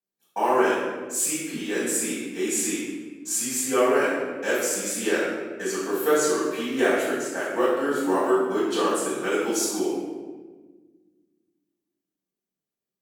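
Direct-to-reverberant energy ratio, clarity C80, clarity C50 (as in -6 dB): -10.0 dB, 1.5 dB, -1.0 dB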